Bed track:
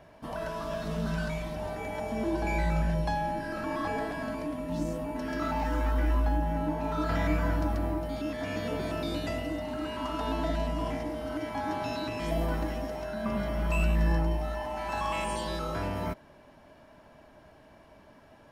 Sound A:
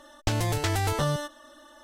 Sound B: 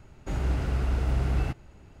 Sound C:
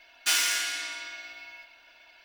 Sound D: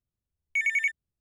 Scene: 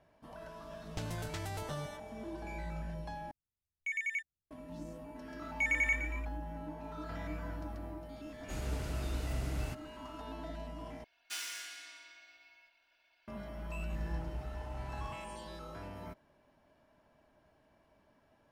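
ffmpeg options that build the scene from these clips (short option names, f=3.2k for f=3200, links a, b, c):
-filter_complex "[4:a]asplit=2[a][b];[2:a]asplit=2[c][d];[0:a]volume=-13.5dB[e];[b]asplit=7[f][g][h][i][j][k][l];[g]adelay=116,afreqshift=34,volume=-10.5dB[m];[h]adelay=232,afreqshift=68,volume=-16.2dB[n];[i]adelay=348,afreqshift=102,volume=-21.9dB[o];[j]adelay=464,afreqshift=136,volume=-27.5dB[p];[k]adelay=580,afreqshift=170,volume=-33.2dB[q];[l]adelay=696,afreqshift=204,volume=-38.9dB[r];[f][m][n][o][p][q][r]amix=inputs=7:normalize=0[s];[c]crystalizer=i=3.5:c=0[t];[e]asplit=3[u][v][w];[u]atrim=end=3.314[x];[a]atrim=end=1.2,asetpts=PTS-STARTPTS,volume=-10.5dB[y];[v]atrim=start=4.506:end=11.044[z];[3:a]atrim=end=2.24,asetpts=PTS-STARTPTS,volume=-16.5dB[aa];[w]atrim=start=13.276[ab];[1:a]atrim=end=1.83,asetpts=PTS-STARTPTS,volume=-14.5dB,afade=t=in:d=0.004:c=hsin,afade=t=out:st=1.826:d=0.004:c=hsin,adelay=700[ac];[s]atrim=end=1.2,asetpts=PTS-STARTPTS,volume=-5.5dB,afade=t=in:d=0.004:c=hsin,afade=t=out:st=1.196:d=0.004:c=hsin,adelay=222705S[ad];[t]atrim=end=2,asetpts=PTS-STARTPTS,volume=-11dB,afade=t=in:d=0.004:c=hsin,afade=t=out:st=1.996:d=0.004:c=hsin,adelay=8220[ae];[d]atrim=end=2,asetpts=PTS-STARTPTS,volume=-17.5dB,afade=t=in:d=0.004:c=hsin,afade=t=out:st=1.996:d=0.004:c=hsin,adelay=13630[af];[x][y]acrossfade=d=0.004:c1=hsin:c2=hsin[ag];[ag][z]acrossfade=d=0.004:c1=hsin:c2=hsin[ah];[ah][aa]acrossfade=d=0.004:c1=hsin:c2=hsin[ai];[ai][ab]acrossfade=d=0.004:c1=hsin:c2=hsin[aj];[aj][ac][ad][ae][af]amix=inputs=5:normalize=0"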